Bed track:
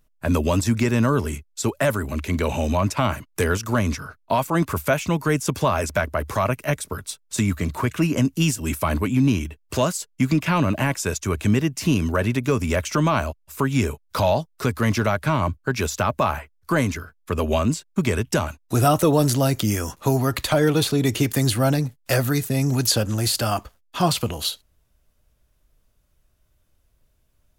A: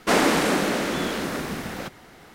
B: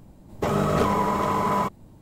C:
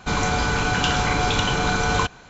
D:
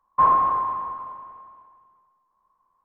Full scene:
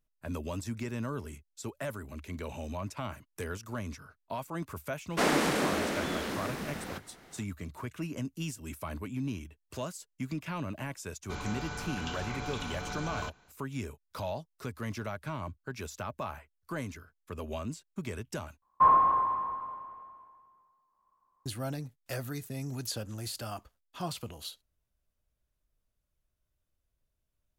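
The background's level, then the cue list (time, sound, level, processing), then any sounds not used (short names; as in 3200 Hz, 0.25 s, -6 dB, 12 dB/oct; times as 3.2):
bed track -16.5 dB
5.1 add A -7.5 dB
11.23 add C -17.5 dB
18.62 replace with D -4 dB
not used: B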